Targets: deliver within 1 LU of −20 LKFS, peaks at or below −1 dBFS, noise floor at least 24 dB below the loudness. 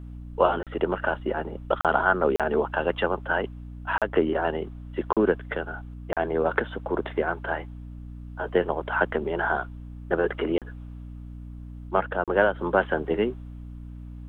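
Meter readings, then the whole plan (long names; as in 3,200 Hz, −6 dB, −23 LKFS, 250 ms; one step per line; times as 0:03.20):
number of dropouts 8; longest dropout 37 ms; mains hum 60 Hz; hum harmonics up to 300 Hz; level of the hum −37 dBFS; integrated loudness −26.5 LKFS; sample peak −6.0 dBFS; target loudness −20.0 LKFS
→ repair the gap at 0:00.63/0:01.81/0:02.36/0:03.98/0:05.13/0:06.13/0:10.58/0:12.24, 37 ms
hum removal 60 Hz, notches 5
level +6.5 dB
brickwall limiter −1 dBFS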